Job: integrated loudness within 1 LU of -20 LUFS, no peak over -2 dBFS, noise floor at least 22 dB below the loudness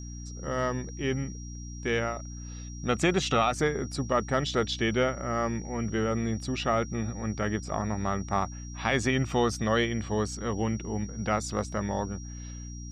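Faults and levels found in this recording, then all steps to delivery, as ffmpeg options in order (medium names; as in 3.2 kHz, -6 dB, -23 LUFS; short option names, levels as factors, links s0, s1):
hum 60 Hz; highest harmonic 300 Hz; hum level -38 dBFS; steady tone 5.7 kHz; tone level -47 dBFS; loudness -29.5 LUFS; peak level -12.0 dBFS; loudness target -20.0 LUFS
-> -af "bandreject=f=60:t=h:w=4,bandreject=f=120:t=h:w=4,bandreject=f=180:t=h:w=4,bandreject=f=240:t=h:w=4,bandreject=f=300:t=h:w=4"
-af "bandreject=f=5700:w=30"
-af "volume=2.99"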